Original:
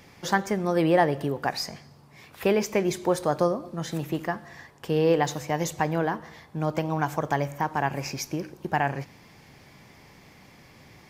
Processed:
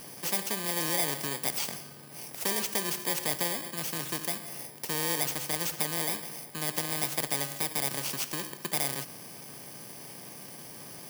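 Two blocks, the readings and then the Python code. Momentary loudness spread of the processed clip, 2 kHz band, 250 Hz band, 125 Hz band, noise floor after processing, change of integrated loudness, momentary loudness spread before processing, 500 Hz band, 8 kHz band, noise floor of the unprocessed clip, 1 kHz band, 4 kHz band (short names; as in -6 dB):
15 LU, -4.0 dB, -11.5 dB, -11.0 dB, -47 dBFS, -3.0 dB, 12 LU, -13.0 dB, +7.5 dB, -53 dBFS, -10.5 dB, +4.0 dB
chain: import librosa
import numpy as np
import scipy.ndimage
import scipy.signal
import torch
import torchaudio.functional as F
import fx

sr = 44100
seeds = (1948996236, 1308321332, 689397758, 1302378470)

y = fx.bit_reversed(x, sr, seeds[0], block=32)
y = scipy.signal.sosfilt(scipy.signal.butter(4, 130.0, 'highpass', fs=sr, output='sos'), y)
y = fx.spectral_comp(y, sr, ratio=2.0)
y = F.gain(torch.from_numpy(y), -6.0).numpy()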